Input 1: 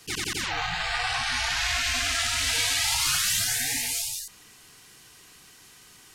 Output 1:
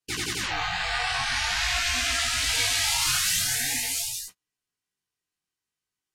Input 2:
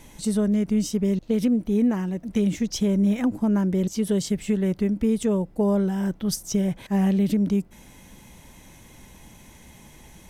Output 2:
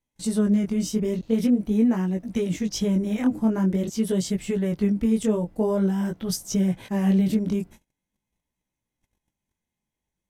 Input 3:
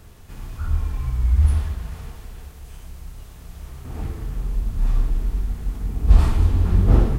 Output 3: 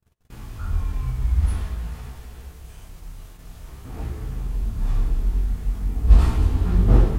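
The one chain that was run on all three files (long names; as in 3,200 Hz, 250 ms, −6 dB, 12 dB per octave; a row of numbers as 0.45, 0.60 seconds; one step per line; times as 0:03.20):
chorus effect 0.46 Hz, delay 16 ms, depth 7.2 ms
noise gate −44 dBFS, range −37 dB
loudness normalisation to −24 LKFS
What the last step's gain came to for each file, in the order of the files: +3.5, +3.0, +2.0 decibels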